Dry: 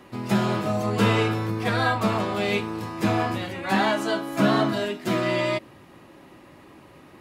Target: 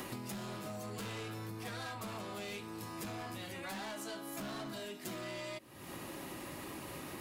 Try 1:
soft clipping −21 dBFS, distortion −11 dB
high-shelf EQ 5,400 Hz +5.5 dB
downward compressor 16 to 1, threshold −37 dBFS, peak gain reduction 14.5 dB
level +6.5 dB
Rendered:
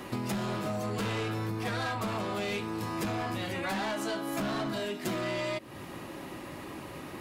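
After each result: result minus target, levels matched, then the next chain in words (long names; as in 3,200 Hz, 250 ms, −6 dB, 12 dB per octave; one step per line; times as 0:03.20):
downward compressor: peak gain reduction −11 dB; 8,000 Hz band −6.0 dB
soft clipping −21 dBFS, distortion −11 dB
high-shelf EQ 5,400 Hz +5.5 dB
downward compressor 16 to 1, threshold −48 dBFS, peak gain reduction 25 dB
level +6.5 dB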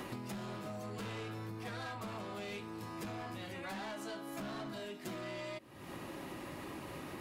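8,000 Hz band −6.0 dB
soft clipping −21 dBFS, distortion −11 dB
high-shelf EQ 5,400 Hz +16 dB
downward compressor 16 to 1, threshold −48 dBFS, peak gain reduction 25.5 dB
level +6.5 dB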